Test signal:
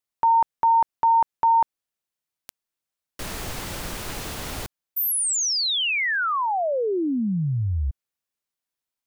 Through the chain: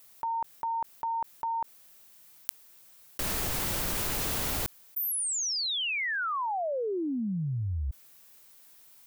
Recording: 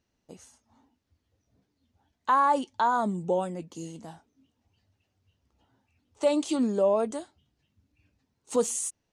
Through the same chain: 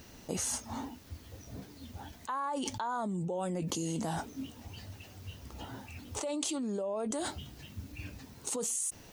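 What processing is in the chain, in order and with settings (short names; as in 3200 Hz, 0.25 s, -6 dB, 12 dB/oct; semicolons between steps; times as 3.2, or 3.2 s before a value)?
high shelf 11000 Hz +11.5 dB; fast leveller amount 100%; gain -15.5 dB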